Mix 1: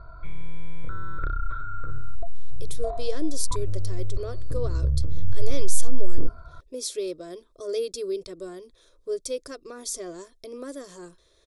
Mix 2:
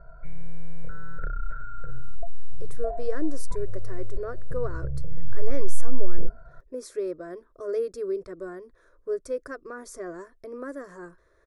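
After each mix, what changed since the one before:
background: add static phaser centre 310 Hz, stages 6; master: add resonant high shelf 2.3 kHz -12 dB, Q 3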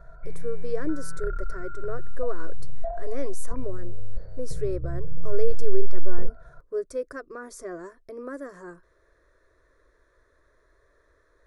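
speech: entry -2.35 s

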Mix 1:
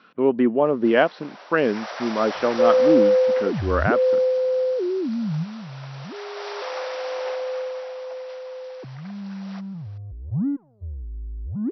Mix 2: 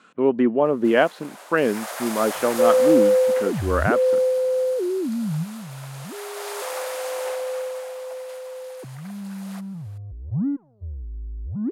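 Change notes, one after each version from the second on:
master: remove brick-wall FIR low-pass 5.9 kHz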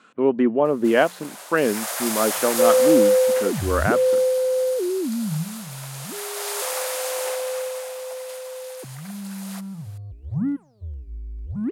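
first sound: add treble shelf 3.3 kHz +9.5 dB; second sound: remove low-pass 1 kHz 12 dB/octave; master: add hum notches 60/120/180 Hz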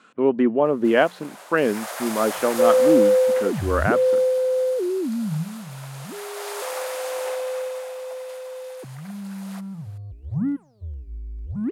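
first sound: add treble shelf 3.3 kHz -9.5 dB

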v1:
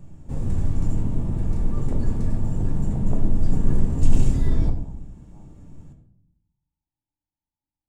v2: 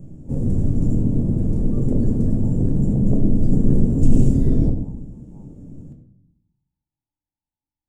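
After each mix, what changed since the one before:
background: add ten-band graphic EQ 125 Hz +5 dB, 250 Hz +9 dB, 500 Hz +8 dB, 1 kHz -9 dB, 2 kHz -8 dB, 4 kHz -7 dB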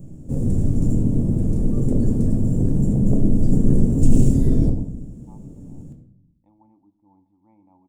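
speech: entry +2.85 s; master: add treble shelf 5.8 kHz +10.5 dB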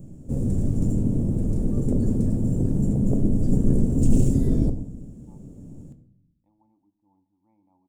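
speech -9.0 dB; background: send -6.5 dB

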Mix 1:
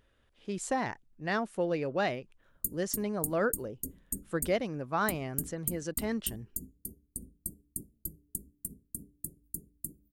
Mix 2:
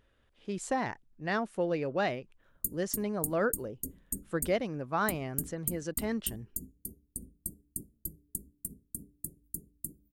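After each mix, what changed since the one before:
speech: add treble shelf 5.3 kHz -3.5 dB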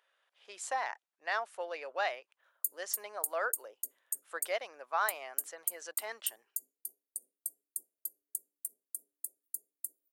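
master: add high-pass 650 Hz 24 dB/octave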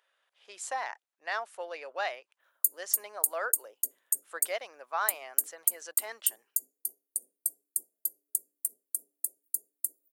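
speech: add treble shelf 5.3 kHz +3.5 dB; background +8.0 dB

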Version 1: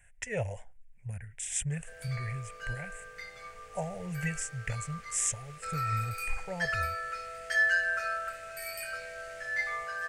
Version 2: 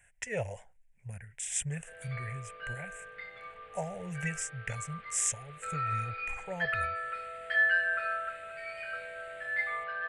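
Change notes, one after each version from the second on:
background: add steep low-pass 3.8 kHz 48 dB/octave; master: add bass shelf 80 Hz -11.5 dB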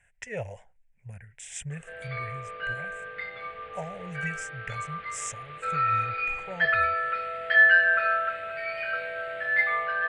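background +9.0 dB; master: add distance through air 63 m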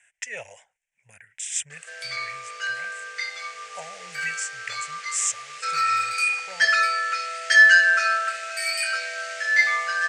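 background: remove steep low-pass 3.8 kHz 48 dB/octave; master: add frequency weighting ITU-R 468

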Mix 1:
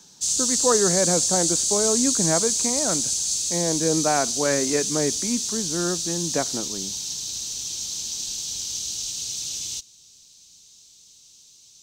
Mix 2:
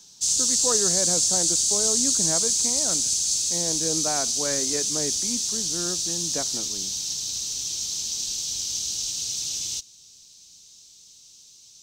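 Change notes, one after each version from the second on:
speech -7.5 dB; master: add peaking EQ 5.3 kHz +2.5 dB 0.4 oct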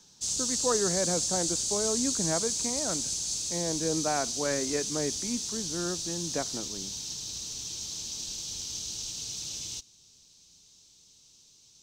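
background: add treble shelf 2.7 kHz -10 dB

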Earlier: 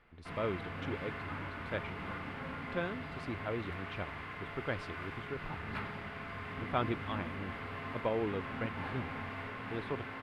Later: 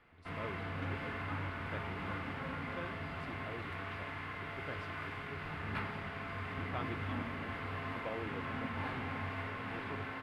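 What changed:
speech -10.5 dB; reverb: on, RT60 0.70 s

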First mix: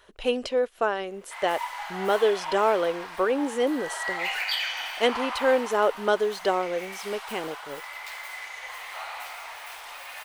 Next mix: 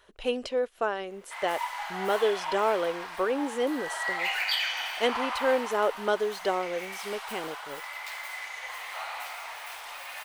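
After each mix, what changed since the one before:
speech -3.5 dB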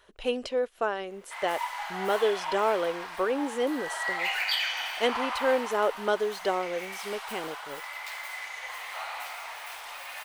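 no change

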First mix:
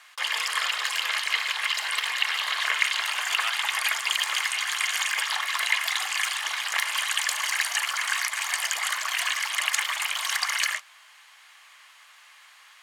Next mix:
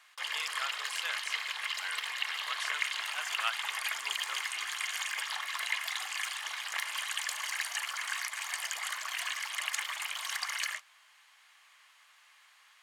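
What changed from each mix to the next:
background -9.0 dB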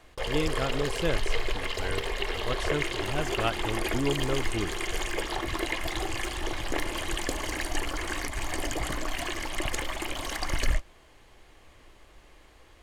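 master: remove high-pass 1.1 kHz 24 dB/octave

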